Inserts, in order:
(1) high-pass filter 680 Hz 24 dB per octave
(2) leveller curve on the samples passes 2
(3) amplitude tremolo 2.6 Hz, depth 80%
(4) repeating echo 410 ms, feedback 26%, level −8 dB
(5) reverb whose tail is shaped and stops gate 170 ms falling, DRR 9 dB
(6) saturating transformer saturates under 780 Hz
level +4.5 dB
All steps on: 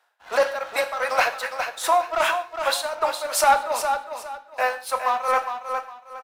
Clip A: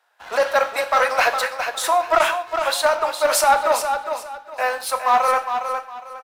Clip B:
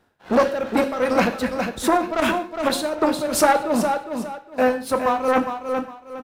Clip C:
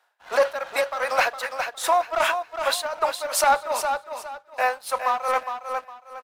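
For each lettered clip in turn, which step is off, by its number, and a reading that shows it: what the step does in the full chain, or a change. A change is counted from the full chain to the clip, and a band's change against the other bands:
3, change in integrated loudness +3.5 LU
1, 250 Hz band +25.0 dB
5, change in crest factor −1.5 dB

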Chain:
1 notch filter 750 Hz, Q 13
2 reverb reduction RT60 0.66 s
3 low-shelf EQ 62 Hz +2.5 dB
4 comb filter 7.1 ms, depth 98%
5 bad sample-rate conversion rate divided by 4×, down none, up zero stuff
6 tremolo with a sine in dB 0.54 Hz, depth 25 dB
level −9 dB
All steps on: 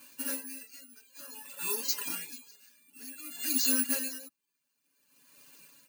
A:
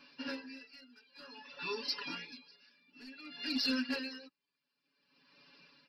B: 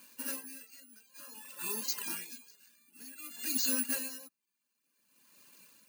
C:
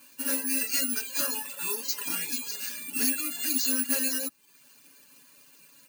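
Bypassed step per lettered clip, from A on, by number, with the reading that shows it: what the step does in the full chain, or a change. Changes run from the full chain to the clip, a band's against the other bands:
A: 5, 8 kHz band −26.5 dB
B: 4, change in integrated loudness −4.0 LU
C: 6, change in momentary loudness spread −15 LU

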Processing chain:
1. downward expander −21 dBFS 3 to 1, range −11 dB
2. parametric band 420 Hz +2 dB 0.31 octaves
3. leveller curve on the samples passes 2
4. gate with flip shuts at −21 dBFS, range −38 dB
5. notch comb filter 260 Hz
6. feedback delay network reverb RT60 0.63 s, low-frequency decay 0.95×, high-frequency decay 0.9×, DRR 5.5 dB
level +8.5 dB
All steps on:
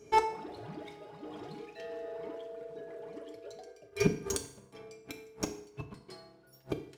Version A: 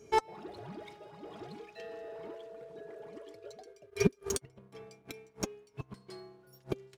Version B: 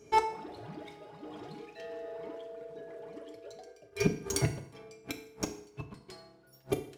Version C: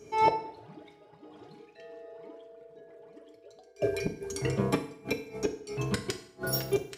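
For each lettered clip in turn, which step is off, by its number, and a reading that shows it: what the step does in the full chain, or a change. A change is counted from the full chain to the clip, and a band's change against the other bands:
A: 6, change in crest factor +2.0 dB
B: 2, 125 Hz band +3.0 dB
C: 3, 8 kHz band −4.5 dB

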